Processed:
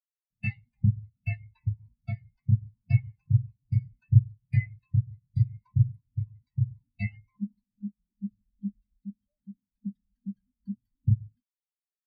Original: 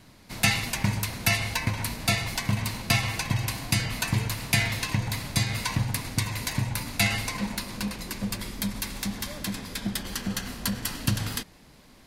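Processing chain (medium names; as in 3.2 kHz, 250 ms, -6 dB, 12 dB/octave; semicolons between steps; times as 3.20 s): spectral contrast expander 4:1; trim -1 dB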